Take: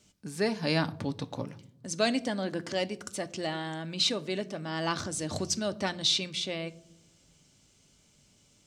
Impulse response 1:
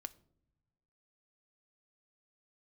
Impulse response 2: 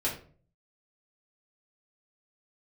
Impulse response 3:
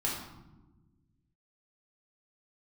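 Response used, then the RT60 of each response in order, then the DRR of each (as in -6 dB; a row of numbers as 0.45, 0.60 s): 1; not exponential, 0.45 s, 1.2 s; 9.5, -6.5, -5.5 dB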